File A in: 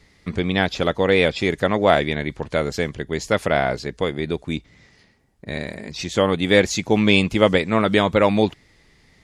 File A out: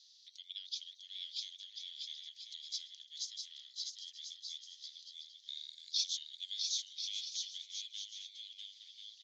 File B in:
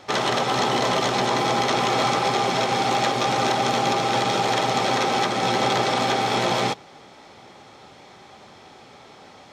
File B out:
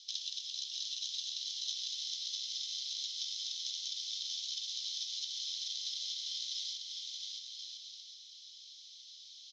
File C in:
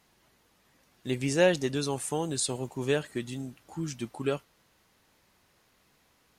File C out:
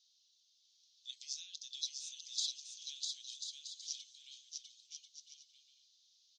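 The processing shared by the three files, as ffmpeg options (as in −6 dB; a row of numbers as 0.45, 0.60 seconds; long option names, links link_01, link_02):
-af "acompressor=threshold=-30dB:ratio=6,asuperpass=centerf=4900:order=8:qfactor=1.6,aecho=1:1:650|1040|1274|1414|1499:0.631|0.398|0.251|0.158|0.1,afreqshift=-170,volume=2.5dB"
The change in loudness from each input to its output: −21.5, −16.0, −13.0 LU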